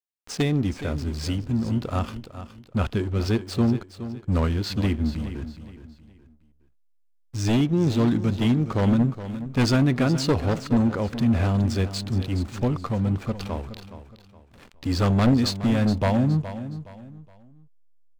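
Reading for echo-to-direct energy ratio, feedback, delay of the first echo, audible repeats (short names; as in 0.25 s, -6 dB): -12.0 dB, 33%, 0.418 s, 3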